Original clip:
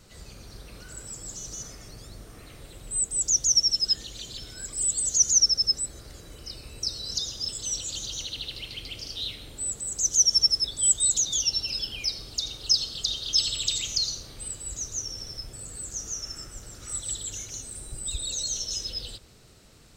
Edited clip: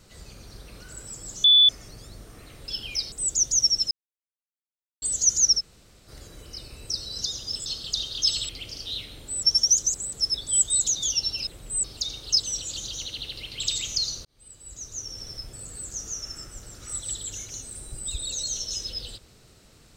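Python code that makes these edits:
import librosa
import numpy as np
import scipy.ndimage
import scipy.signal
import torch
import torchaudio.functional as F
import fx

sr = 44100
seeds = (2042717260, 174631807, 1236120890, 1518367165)

y = fx.edit(x, sr, fx.bleep(start_s=1.44, length_s=0.25, hz=3470.0, db=-12.0),
    fx.swap(start_s=2.68, length_s=0.37, other_s=11.77, other_length_s=0.44),
    fx.silence(start_s=3.84, length_s=1.11),
    fx.room_tone_fill(start_s=5.53, length_s=0.48, crossfade_s=0.04),
    fx.swap(start_s=7.59, length_s=1.2, other_s=12.77, other_length_s=0.83),
    fx.reverse_span(start_s=9.73, length_s=0.77),
    fx.fade_in_span(start_s=14.25, length_s=1.05), tone=tone)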